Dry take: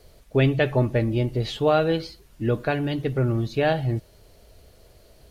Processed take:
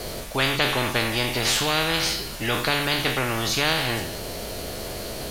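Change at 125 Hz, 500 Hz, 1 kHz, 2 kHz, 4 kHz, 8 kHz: -7.0 dB, -4.5 dB, +3.0 dB, +8.0 dB, +13.5 dB, no reading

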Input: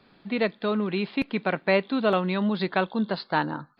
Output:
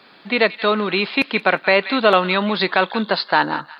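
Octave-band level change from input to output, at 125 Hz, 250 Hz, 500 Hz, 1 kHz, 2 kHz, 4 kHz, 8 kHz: +1.0 dB, +3.0 dB, +7.0 dB, +10.0 dB, +11.5 dB, +13.0 dB, no reading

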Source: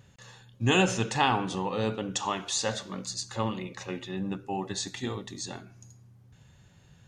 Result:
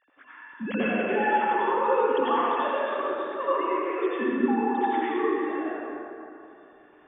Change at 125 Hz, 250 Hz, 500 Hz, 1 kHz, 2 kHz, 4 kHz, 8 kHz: under -10 dB, +4.5 dB, +8.0 dB, +7.5 dB, +3.5 dB, -10.0 dB, under -40 dB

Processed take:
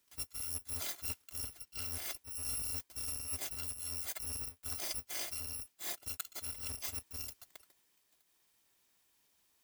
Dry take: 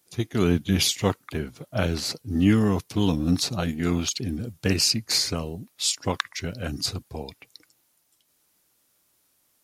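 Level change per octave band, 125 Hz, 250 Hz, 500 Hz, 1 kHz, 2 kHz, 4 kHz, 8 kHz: -25.0 dB, -34.0 dB, -26.5 dB, -19.0 dB, -16.0 dB, -18.0 dB, -9.5 dB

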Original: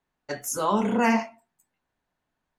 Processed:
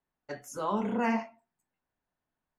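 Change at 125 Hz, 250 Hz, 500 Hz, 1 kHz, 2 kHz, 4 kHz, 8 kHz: -6.5 dB, -6.5 dB, -6.5 dB, -7.0 dB, -8.0 dB, -11.0 dB, -15.5 dB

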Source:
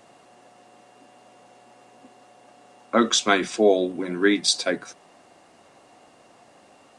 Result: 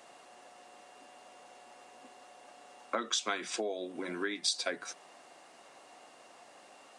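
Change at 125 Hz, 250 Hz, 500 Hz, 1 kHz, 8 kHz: -18.5 dB, -18.0 dB, -16.0 dB, -12.0 dB, -10.0 dB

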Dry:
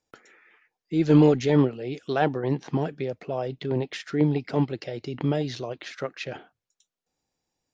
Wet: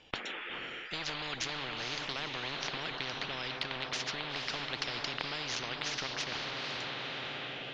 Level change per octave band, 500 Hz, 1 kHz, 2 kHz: -17.5 dB, -6.5 dB, +2.5 dB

